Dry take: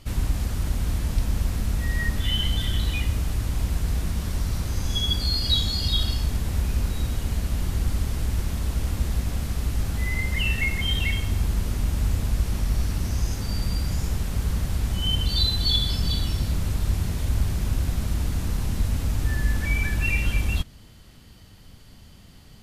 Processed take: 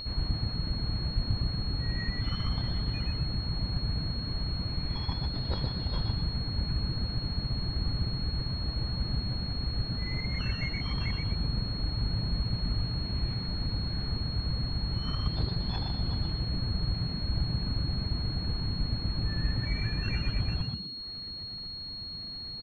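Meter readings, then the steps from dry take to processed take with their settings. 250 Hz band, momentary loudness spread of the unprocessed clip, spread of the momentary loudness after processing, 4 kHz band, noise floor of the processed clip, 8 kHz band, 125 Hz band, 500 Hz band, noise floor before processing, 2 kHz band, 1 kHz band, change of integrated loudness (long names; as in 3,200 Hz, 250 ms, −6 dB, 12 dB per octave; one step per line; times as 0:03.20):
−3.0 dB, 5 LU, 2 LU, −5.0 dB, −40 dBFS, below −25 dB, −5.0 dB, −5.0 dB, −48 dBFS, −11.0 dB, −4.5 dB, −6.5 dB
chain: reverb reduction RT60 0.87 s
upward compression, threshold −32 dBFS
on a send: echo with shifted repeats 122 ms, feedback 33%, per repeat +63 Hz, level −3.5 dB
on the sum: switching amplifier with a slow clock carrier 4,300 Hz
level −6.5 dB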